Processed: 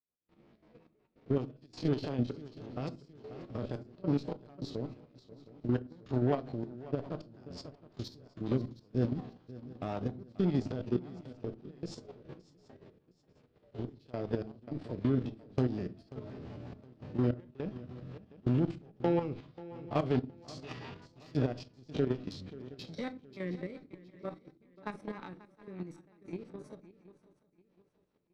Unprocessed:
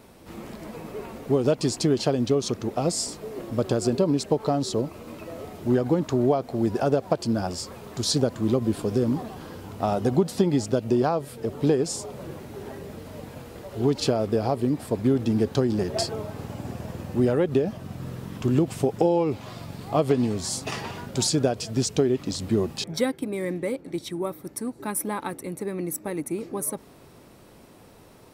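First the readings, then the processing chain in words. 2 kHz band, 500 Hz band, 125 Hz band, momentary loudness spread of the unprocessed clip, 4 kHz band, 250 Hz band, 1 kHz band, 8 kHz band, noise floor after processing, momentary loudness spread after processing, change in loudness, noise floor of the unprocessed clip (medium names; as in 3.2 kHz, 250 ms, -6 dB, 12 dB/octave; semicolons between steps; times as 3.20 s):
-11.5 dB, -13.5 dB, -8.0 dB, 16 LU, -18.5 dB, -10.5 dB, -13.5 dB, under -30 dB, -72 dBFS, 17 LU, -11.0 dB, -50 dBFS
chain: spectrogram pixelated in time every 50 ms; low-pass 4.8 kHz 24 dB/octave; gate -37 dBFS, range -16 dB; dynamic bell 480 Hz, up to -4 dB, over -36 dBFS, Q 0.93; Chebyshev shaper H 4 -27 dB, 5 -41 dB, 6 -31 dB, 7 -23 dB, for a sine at -12 dBFS; trance gate "..xxxx..xx" 104 bpm -24 dB; rotary cabinet horn 5.5 Hz; on a send: shuffle delay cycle 716 ms, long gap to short 3:1, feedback 31%, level -16.5 dB; on the sum: simulated room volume 150 m³, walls furnished, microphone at 0.43 m; level held to a coarse grid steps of 9 dB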